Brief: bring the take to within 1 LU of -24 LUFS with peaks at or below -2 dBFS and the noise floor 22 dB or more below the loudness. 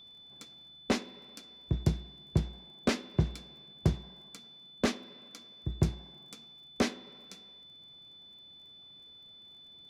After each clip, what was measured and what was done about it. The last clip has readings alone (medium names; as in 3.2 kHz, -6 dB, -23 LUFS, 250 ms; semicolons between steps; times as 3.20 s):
tick rate 19 per s; steady tone 3.5 kHz; tone level -51 dBFS; loudness -34.0 LUFS; peak level -14.5 dBFS; loudness target -24.0 LUFS
-> de-click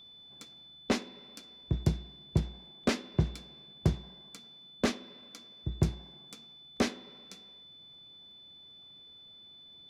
tick rate 0.10 per s; steady tone 3.5 kHz; tone level -51 dBFS
-> band-stop 3.5 kHz, Q 30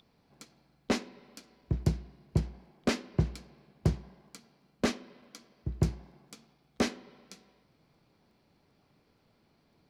steady tone not found; loudness -34.0 LUFS; peak level -14.5 dBFS; loudness target -24.0 LUFS
-> trim +10 dB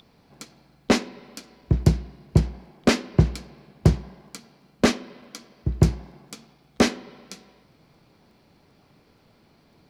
loudness -24.0 LUFS; peak level -4.5 dBFS; noise floor -59 dBFS